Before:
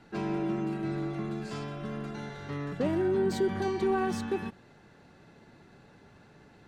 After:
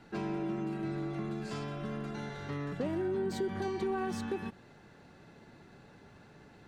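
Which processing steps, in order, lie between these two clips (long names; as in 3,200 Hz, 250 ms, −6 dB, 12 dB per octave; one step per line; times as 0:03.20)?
downward compressor 2 to 1, threshold −35 dBFS, peak gain reduction 7 dB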